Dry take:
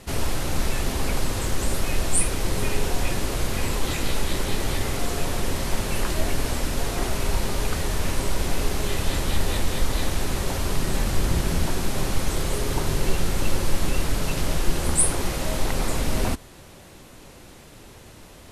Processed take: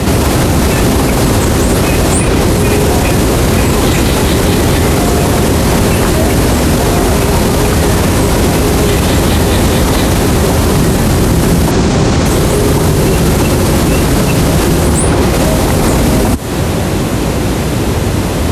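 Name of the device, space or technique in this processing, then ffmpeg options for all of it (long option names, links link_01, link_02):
mastering chain: -filter_complex "[0:a]asettb=1/sr,asplit=3[link_01][link_02][link_03];[link_01]atrim=end=11.714[link_04];[link_02]atrim=start=11.71:end=12.26,asetpts=PTS-STARTPTS,afade=type=in:duration=0.004:curve=qsin,afade=type=out:start_time=0.546:duration=0.004:curve=qsin,lowpass=frequency=7200:width=0.5412,lowpass=frequency=7200:width=1.3066[link_05];[link_03]atrim=start=12.256[link_06];[link_04][link_05]acrossfade=duration=0.004:curve1=hsin:curve2=qsin[link_07];[link_07][link_06]acrossfade=duration=0.004:curve1=qsin:curve2=hsin,highpass=frequency=50:width=0.5412,highpass=frequency=50:width=1.3066,equalizer=frequency=560:width_type=o:width=0.77:gain=-2,acrossover=split=130|6200[link_08][link_09][link_10];[link_08]acompressor=threshold=-42dB:ratio=4[link_11];[link_09]acompressor=threshold=-34dB:ratio=4[link_12];[link_10]acompressor=threshold=-40dB:ratio=4[link_13];[link_11][link_12][link_13]amix=inputs=3:normalize=0,acompressor=threshold=-42dB:ratio=1.5,asoftclip=type=tanh:threshold=-27dB,tiltshelf=frequency=940:gain=5,alimiter=level_in=33dB:limit=-1dB:release=50:level=0:latency=1,volume=-1dB"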